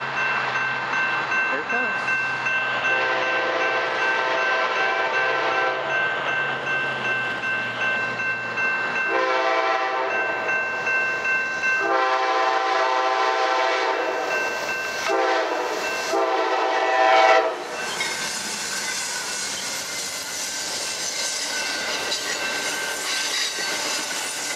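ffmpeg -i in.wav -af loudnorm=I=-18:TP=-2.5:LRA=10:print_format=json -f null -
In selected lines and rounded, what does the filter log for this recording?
"input_i" : "-22.2",
"input_tp" : "-4.9",
"input_lra" : "3.6",
"input_thresh" : "-32.2",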